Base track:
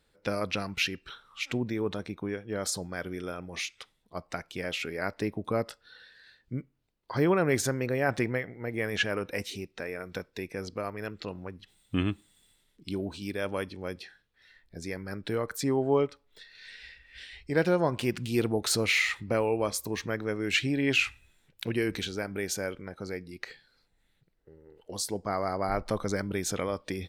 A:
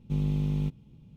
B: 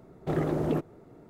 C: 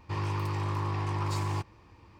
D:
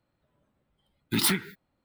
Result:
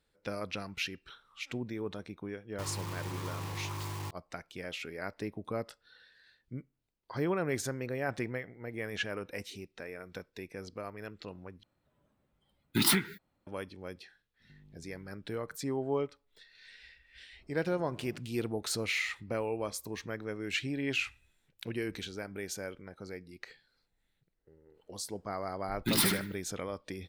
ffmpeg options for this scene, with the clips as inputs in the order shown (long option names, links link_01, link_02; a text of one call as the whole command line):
ffmpeg -i bed.wav -i cue0.wav -i cue1.wav -i cue2.wav -i cue3.wav -filter_complex "[4:a]asplit=2[link_01][link_02];[0:a]volume=-7dB[link_03];[3:a]acrusher=bits=5:mix=0:aa=0.000001[link_04];[1:a]acompressor=threshold=-41dB:ratio=6:attack=3.2:release=140:knee=1:detection=peak[link_05];[2:a]alimiter=level_in=2.5dB:limit=-24dB:level=0:latency=1:release=316,volume=-2.5dB[link_06];[link_02]aecho=1:1:75|150|225:0.596|0.131|0.0288[link_07];[link_03]asplit=2[link_08][link_09];[link_08]atrim=end=11.634[link_10];[link_01]atrim=end=1.84,asetpts=PTS-STARTPTS,volume=-1.5dB[link_11];[link_09]atrim=start=13.466[link_12];[link_04]atrim=end=2.19,asetpts=PTS-STARTPTS,volume=-8.5dB,afade=type=in:duration=0.004:curve=hsin,afade=type=out:start_time=2.186:duration=0.004:curve=hsin,adelay=2490[link_13];[link_05]atrim=end=1.16,asetpts=PTS-STARTPTS,volume=-15.5dB,afade=type=in:duration=0.004:curve=hsin,afade=type=out:start_time=1.156:duration=0.004:curve=hsin,adelay=14400[link_14];[link_06]atrim=end=1.29,asetpts=PTS-STARTPTS,volume=-16.5dB,afade=type=in:duration=0.004:curve=hsin,afade=type=out:start_time=1.286:duration=0.004:curve=hsin,adelay=17390[link_15];[link_07]atrim=end=1.84,asetpts=PTS-STARTPTS,volume=-4dB,afade=type=in:duration=0.004:curve=hsin,afade=type=out:start_time=1.836:duration=0.004:curve=hsin,adelay=24740[link_16];[link_10][link_11]acrossfade=duration=0.004:curve1=hsin:curve2=hsin[link_17];[link_17][link_12]acrossfade=duration=0.004:curve1=hsin:curve2=hsin[link_18];[link_18][link_13][link_14][link_15][link_16]amix=inputs=5:normalize=0" out.wav